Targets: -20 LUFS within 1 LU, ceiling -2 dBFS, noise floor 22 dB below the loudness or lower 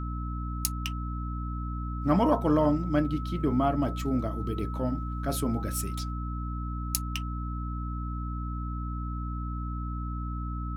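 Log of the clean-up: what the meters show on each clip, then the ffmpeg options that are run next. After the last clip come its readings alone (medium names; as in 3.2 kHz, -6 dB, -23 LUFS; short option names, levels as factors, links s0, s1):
hum 60 Hz; highest harmonic 300 Hz; hum level -31 dBFS; steady tone 1.3 kHz; tone level -40 dBFS; loudness -30.5 LUFS; peak level -6.0 dBFS; loudness target -20.0 LUFS
-> -af "bandreject=f=60:t=h:w=4,bandreject=f=120:t=h:w=4,bandreject=f=180:t=h:w=4,bandreject=f=240:t=h:w=4,bandreject=f=300:t=h:w=4"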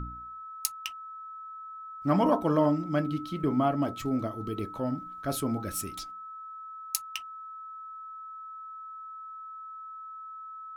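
hum not found; steady tone 1.3 kHz; tone level -40 dBFS
-> -af "bandreject=f=1300:w=30"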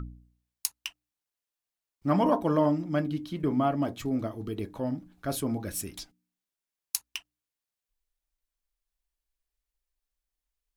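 steady tone not found; loudness -30.0 LUFS; peak level -7.0 dBFS; loudness target -20.0 LUFS
-> -af "volume=3.16,alimiter=limit=0.794:level=0:latency=1"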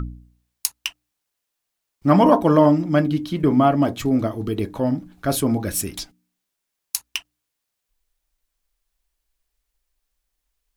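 loudness -20.0 LUFS; peak level -2.0 dBFS; noise floor -80 dBFS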